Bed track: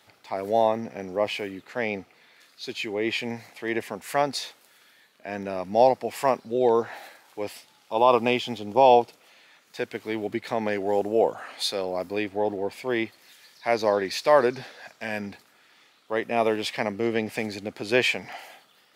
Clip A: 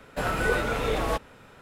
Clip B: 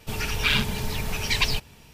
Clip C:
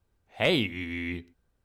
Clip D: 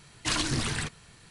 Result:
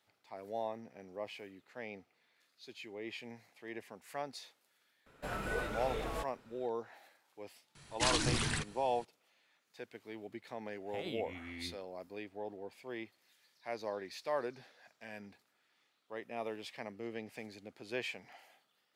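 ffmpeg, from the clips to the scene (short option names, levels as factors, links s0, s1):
-filter_complex "[0:a]volume=0.133[s0];[3:a]alimiter=limit=0.0891:level=0:latency=1:release=71[s1];[1:a]atrim=end=1.61,asetpts=PTS-STARTPTS,volume=0.237,afade=t=in:d=0.004:c=hsin,afade=t=out:st=1.606:d=0.004:c=hsin,adelay=5060[s2];[4:a]atrim=end=1.3,asetpts=PTS-STARTPTS,volume=0.631,afade=t=in:d=0.004:c=hsin,afade=t=out:st=1.296:d=0.004:c=hsin,adelay=7750[s3];[s1]atrim=end=1.64,asetpts=PTS-STARTPTS,volume=0.224,afade=t=in:d=0.004:c=hsin,afade=t=out:st=1.636:d=0.004:c=hsin,adelay=10540[s4];[s0][s2][s3][s4]amix=inputs=4:normalize=0"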